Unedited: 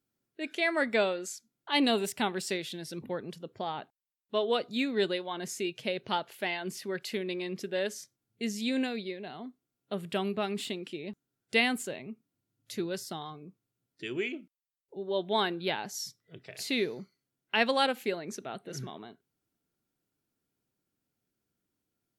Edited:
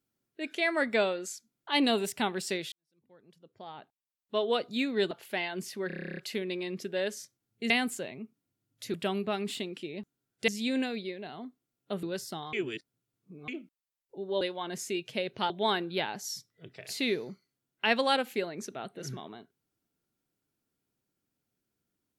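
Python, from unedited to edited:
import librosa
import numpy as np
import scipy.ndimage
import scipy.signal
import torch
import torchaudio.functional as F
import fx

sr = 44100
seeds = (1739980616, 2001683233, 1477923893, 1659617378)

y = fx.edit(x, sr, fx.fade_in_span(start_s=2.72, length_s=1.68, curve='qua'),
    fx.move(start_s=5.11, length_s=1.09, to_s=15.2),
    fx.stutter(start_s=6.96, slice_s=0.03, count=11),
    fx.swap(start_s=8.49, length_s=1.55, other_s=11.58, other_length_s=1.24),
    fx.reverse_span(start_s=13.32, length_s=0.95), tone=tone)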